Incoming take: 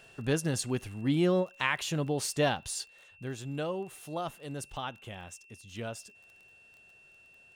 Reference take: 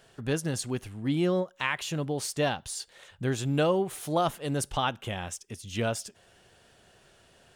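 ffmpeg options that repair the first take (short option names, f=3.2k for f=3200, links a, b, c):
-af "adeclick=t=4,bandreject=f=2.7k:w=30,asetnsamples=n=441:p=0,asendcmd='2.86 volume volume 9.5dB',volume=0dB"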